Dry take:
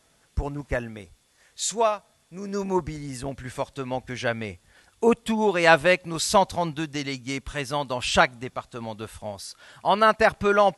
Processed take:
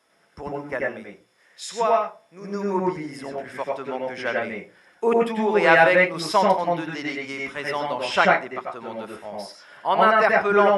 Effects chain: HPF 200 Hz 6 dB/oct; reverb RT60 0.35 s, pre-delay 86 ms, DRR -1.5 dB; gain -6.5 dB

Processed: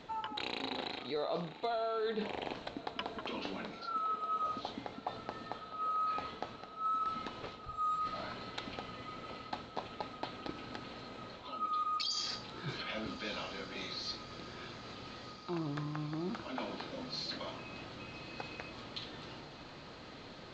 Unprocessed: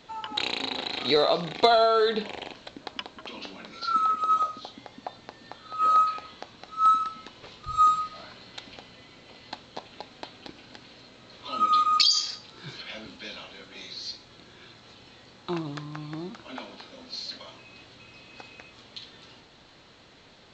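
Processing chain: high shelf 3100 Hz -10.5 dB; reverse; compressor 5:1, threshold -40 dBFS, peak gain reduction 22 dB; reverse; diffused feedback echo 1.25 s, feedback 77%, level -16 dB; gain +4 dB

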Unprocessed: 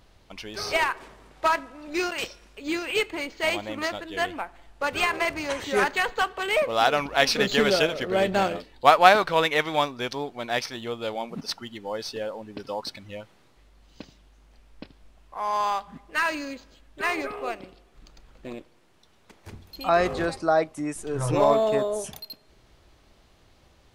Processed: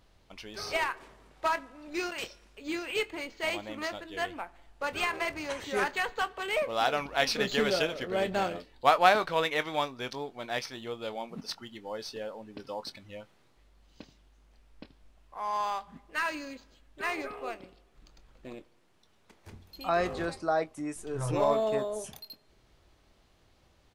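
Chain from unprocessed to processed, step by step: doubler 23 ms -14 dB; gain -6.5 dB

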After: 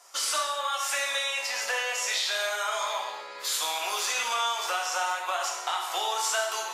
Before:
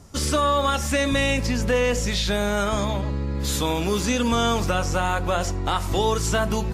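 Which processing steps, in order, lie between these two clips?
HPF 740 Hz 24 dB/oct; compressor, threshold -28 dBFS, peak gain reduction 8.5 dB; non-linear reverb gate 0.32 s falling, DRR -1 dB

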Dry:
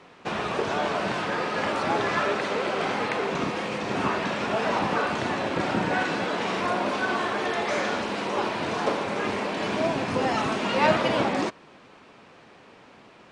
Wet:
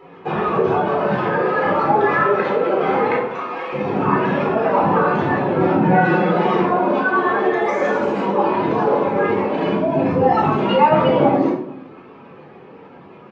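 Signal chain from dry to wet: spectral contrast raised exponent 1.9; 3.19–3.73 HPF 750 Hz 12 dB/oct; 5.84–6.56 comb 5.6 ms, depth 72%; 7.61–8.21 resonant high shelf 5700 Hz +10 dB, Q 1.5; outdoor echo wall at 77 m, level -29 dB; shoebox room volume 850 m³, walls furnished, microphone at 4 m; gain +3.5 dB

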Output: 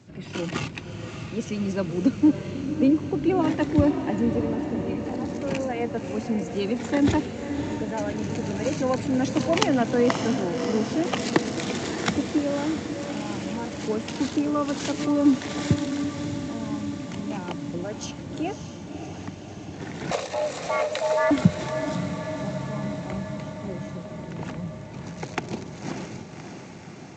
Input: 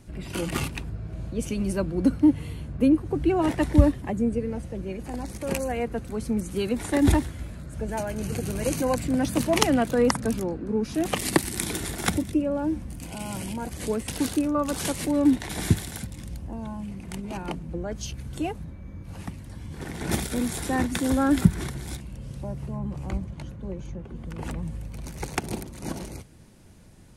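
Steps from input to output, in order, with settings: HPF 100 Hz 24 dB/oct; 20.11–21.31 frequency shift +360 Hz; diffused feedback echo 0.587 s, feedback 70%, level -8 dB; G.722 64 kbps 16000 Hz

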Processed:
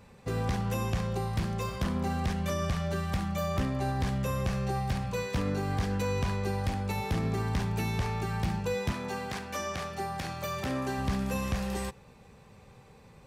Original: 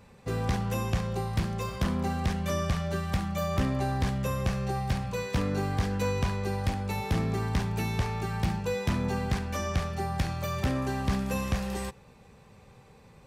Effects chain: 8.91–10.97 HPF 540 Hz -> 180 Hz 6 dB/oct; limiter -22 dBFS, peak gain reduction 3.5 dB

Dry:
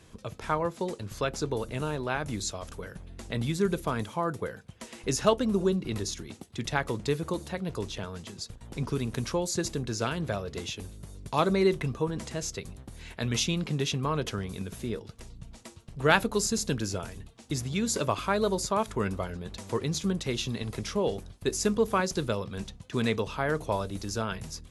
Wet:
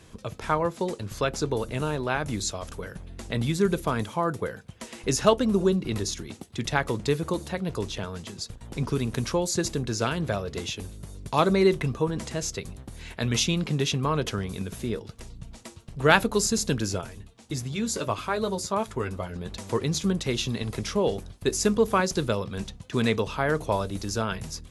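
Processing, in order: 17.01–19.36 flange 1.5 Hz, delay 7.1 ms, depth 4 ms, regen -37%; gain +3.5 dB

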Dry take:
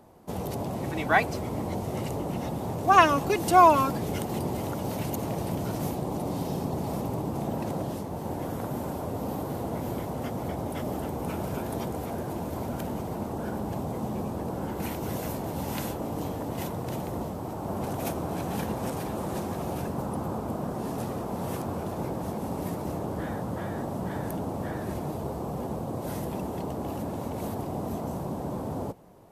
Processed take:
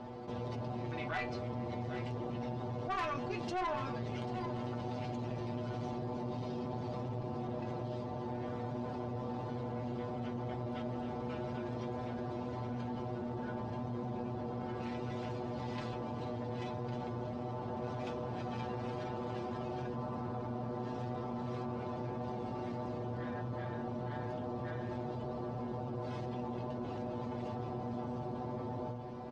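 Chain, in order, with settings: LPF 4700 Hz 24 dB/oct; metallic resonator 120 Hz, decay 0.24 s, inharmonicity 0.002; tube stage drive 25 dB, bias 0.7; echo 0.79 s -18 dB; fast leveller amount 70%; gain -7 dB

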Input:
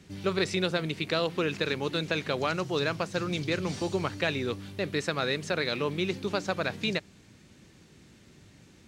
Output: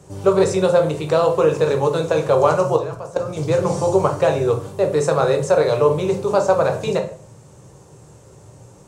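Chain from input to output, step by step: graphic EQ 125/250/500/1000/2000/4000/8000 Hz +8/-10/+12/+11/-9/-8/+11 dB; 2.76–3.37 level quantiser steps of 17 dB; shoebox room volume 42 m³, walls mixed, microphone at 0.44 m; gain +3.5 dB

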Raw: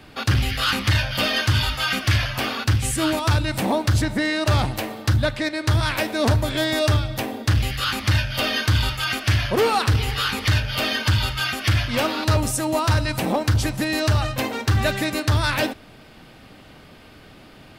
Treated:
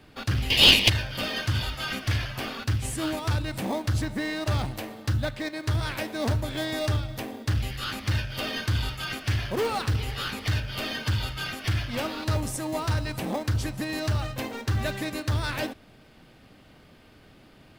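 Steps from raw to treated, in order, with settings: 0.5–0.9 resonant high shelf 1900 Hz +12.5 dB, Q 3; in parallel at -10 dB: sample-rate reducer 1400 Hz; on the sum: gain -9 dB

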